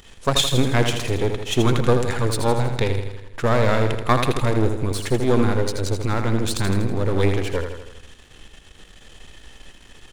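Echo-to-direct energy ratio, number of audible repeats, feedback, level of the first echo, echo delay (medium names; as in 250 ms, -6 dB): -5.5 dB, 6, 56%, -7.0 dB, 81 ms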